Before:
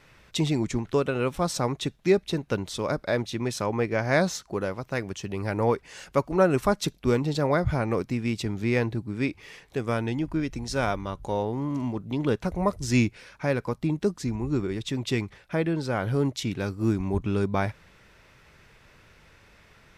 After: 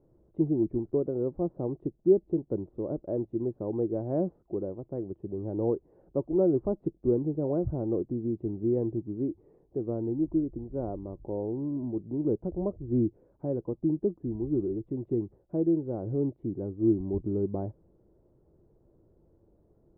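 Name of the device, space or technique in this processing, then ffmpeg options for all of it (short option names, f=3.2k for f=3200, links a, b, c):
under water: -af "lowpass=f=650:w=0.5412,lowpass=f=650:w=1.3066,equalizer=f=340:t=o:w=0.41:g=11,volume=-6.5dB"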